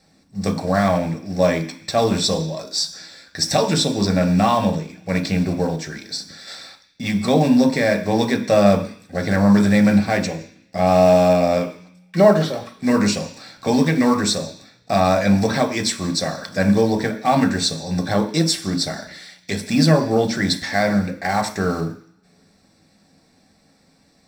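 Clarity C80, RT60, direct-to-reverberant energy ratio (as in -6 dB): 14.0 dB, 0.50 s, 3.0 dB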